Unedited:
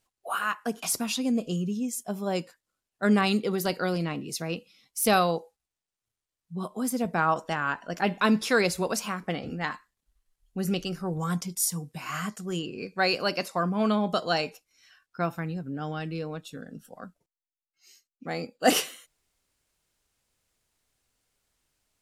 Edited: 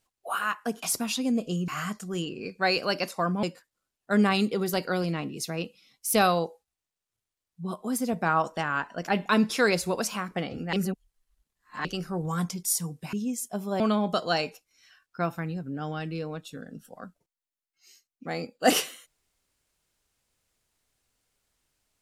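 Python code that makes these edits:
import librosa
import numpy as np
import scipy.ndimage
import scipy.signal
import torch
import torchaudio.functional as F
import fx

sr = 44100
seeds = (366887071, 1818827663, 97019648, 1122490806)

y = fx.edit(x, sr, fx.swap(start_s=1.68, length_s=0.67, other_s=12.05, other_length_s=1.75),
    fx.reverse_span(start_s=9.65, length_s=1.12), tone=tone)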